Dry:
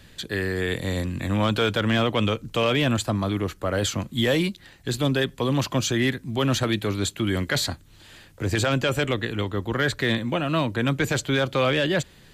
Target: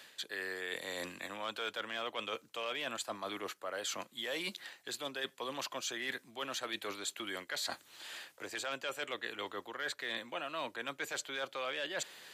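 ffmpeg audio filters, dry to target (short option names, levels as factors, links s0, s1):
-af "highpass=610,areverse,acompressor=threshold=0.00891:ratio=4,areverse,volume=1.26"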